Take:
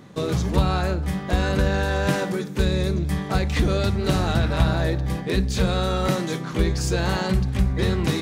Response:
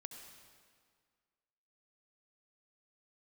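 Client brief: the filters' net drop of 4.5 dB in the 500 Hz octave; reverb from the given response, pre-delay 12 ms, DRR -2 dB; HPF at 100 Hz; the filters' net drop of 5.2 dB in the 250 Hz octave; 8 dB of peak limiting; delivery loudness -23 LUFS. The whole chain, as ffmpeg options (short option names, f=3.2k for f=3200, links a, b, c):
-filter_complex "[0:a]highpass=100,equalizer=f=250:t=o:g=-7,equalizer=f=500:t=o:g=-3.5,alimiter=limit=-18.5dB:level=0:latency=1,asplit=2[a][b];[1:a]atrim=start_sample=2205,adelay=12[c];[b][c]afir=irnorm=-1:irlink=0,volume=6.5dB[d];[a][d]amix=inputs=2:normalize=0,volume=2dB"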